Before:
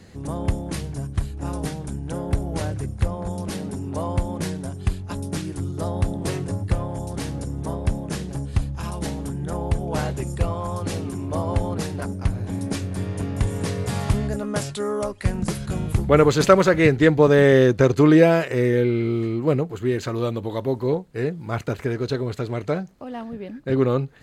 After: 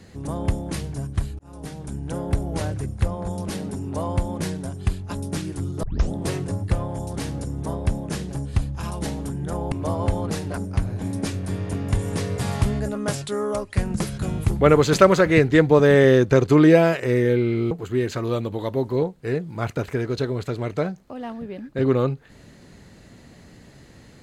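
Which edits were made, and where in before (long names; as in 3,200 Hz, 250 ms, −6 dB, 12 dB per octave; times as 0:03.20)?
0:01.39–0:02.02: fade in
0:05.83: tape start 0.29 s
0:09.72–0:11.20: remove
0:19.19–0:19.62: remove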